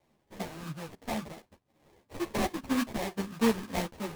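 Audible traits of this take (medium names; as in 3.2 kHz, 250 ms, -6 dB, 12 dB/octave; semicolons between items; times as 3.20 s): phasing stages 6, 3 Hz, lowest notch 560–3600 Hz; aliases and images of a low sample rate 1.4 kHz, jitter 20%; a shimmering, thickened sound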